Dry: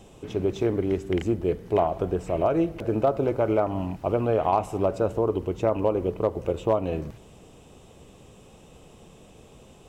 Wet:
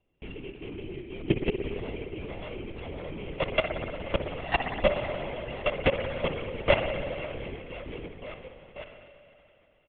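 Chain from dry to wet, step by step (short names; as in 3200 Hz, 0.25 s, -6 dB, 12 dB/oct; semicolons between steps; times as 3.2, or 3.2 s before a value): sample sorter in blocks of 16 samples; 1.58–3.17 compressor 5:1, threshold -28 dBFS, peak gain reduction 10.5 dB; feedback echo 0.519 s, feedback 56%, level -4 dB; reverb removal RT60 1.8 s; level quantiser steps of 21 dB; gate -54 dBFS, range -16 dB; spring tank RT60 2.9 s, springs 58 ms, chirp 55 ms, DRR 4 dB; LPC vocoder at 8 kHz whisper; gain +3 dB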